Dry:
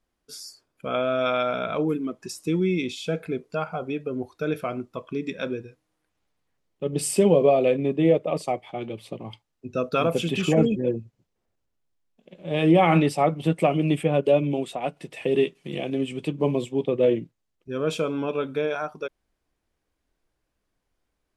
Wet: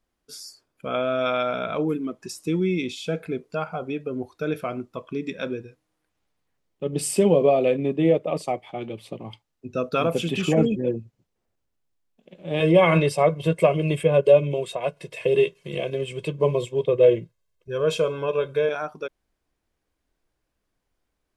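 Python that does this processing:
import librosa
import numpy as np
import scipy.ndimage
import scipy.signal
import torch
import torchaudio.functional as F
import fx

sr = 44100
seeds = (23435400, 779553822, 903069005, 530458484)

y = fx.comb(x, sr, ms=1.9, depth=0.84, at=(12.6, 18.69))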